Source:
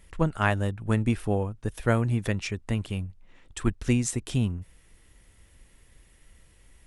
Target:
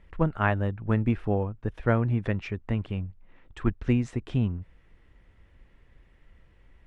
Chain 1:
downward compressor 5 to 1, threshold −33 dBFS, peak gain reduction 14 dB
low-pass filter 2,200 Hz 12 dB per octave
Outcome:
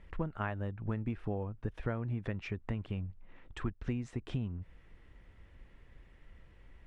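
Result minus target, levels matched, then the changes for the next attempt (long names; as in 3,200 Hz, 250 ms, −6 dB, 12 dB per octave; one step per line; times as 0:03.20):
downward compressor: peak gain reduction +14 dB
remove: downward compressor 5 to 1, threshold −33 dBFS, peak gain reduction 14 dB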